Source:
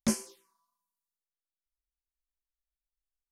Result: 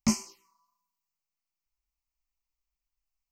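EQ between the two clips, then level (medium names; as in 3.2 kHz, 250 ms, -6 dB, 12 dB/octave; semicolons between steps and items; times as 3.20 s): static phaser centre 2.4 kHz, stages 8; +5.5 dB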